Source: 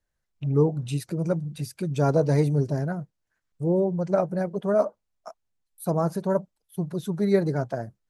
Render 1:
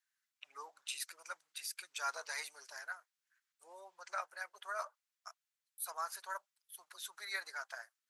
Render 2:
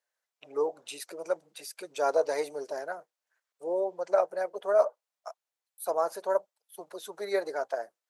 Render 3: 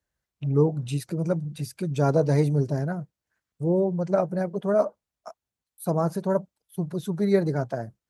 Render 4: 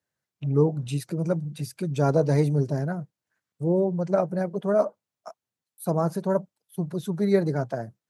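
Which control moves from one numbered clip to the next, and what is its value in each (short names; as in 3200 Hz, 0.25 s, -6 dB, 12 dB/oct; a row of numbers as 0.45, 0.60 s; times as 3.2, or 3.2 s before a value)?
HPF, cutoff: 1300, 500, 41, 100 Hz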